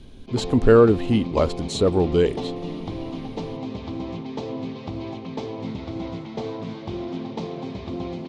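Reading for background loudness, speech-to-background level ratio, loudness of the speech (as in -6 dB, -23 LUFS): -32.0 LUFS, 12.0 dB, -20.0 LUFS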